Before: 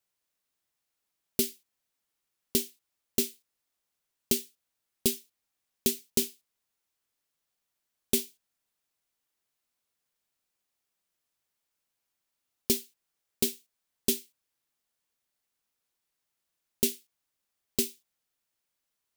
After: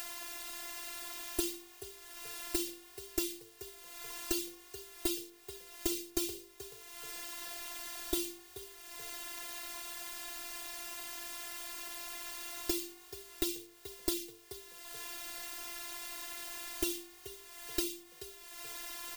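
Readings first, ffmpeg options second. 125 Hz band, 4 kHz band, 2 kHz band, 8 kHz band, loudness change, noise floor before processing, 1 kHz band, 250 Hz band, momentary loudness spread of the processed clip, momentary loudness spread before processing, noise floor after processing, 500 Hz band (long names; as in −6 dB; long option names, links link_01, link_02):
−9.0 dB, −2.5 dB, +4.5 dB, −4.5 dB, −9.5 dB, −84 dBFS, +11.5 dB, −4.0 dB, 12 LU, 7 LU, −57 dBFS, −5.0 dB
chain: -filter_complex "[0:a]bass=frequency=250:gain=-4,treble=frequency=4000:gain=-4,bandreject=frequency=50:width_type=h:width=6,bandreject=frequency=100:width_type=h:width=6,bandreject=frequency=150:width_type=h:width=6,bandreject=frequency=200:width_type=h:width=6,bandreject=frequency=250:width_type=h:width=6,bandreject=frequency=300:width_type=h:width=6,bandreject=frequency=350:width_type=h:width=6,bandreject=frequency=400:width_type=h:width=6,aecho=1:1:4:0.83,asplit=2[link_01][link_02];[link_02]acompressor=mode=upward:threshold=-33dB:ratio=2.5,volume=-2.5dB[link_03];[link_01][link_03]amix=inputs=2:normalize=0,alimiter=limit=-15dB:level=0:latency=1:release=120,acompressor=threshold=-40dB:ratio=16,afftfilt=real='hypot(re,im)*cos(PI*b)':imag='0':win_size=512:overlap=0.75,aeval=exprs='(tanh(39.8*val(0)+0.1)-tanh(0.1))/39.8':channel_layout=same,asplit=4[link_04][link_05][link_06][link_07];[link_05]adelay=431,afreqshift=50,volume=-14dB[link_08];[link_06]adelay=862,afreqshift=100,volume=-23.9dB[link_09];[link_07]adelay=1293,afreqshift=150,volume=-33.8dB[link_10];[link_04][link_08][link_09][link_10]amix=inputs=4:normalize=0,volume=18dB"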